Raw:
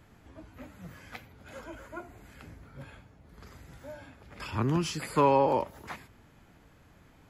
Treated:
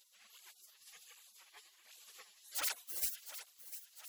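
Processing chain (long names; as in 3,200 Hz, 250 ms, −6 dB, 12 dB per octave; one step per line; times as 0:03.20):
wrap-around overflow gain 19.5 dB
time stretch by phase vocoder 0.56×
gate on every frequency bin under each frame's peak −30 dB weak
feedback echo with a high-pass in the loop 705 ms, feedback 57%, high-pass 420 Hz, level −12 dB
through-zero flanger with one copy inverted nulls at 1.3 Hz, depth 6.9 ms
level +14.5 dB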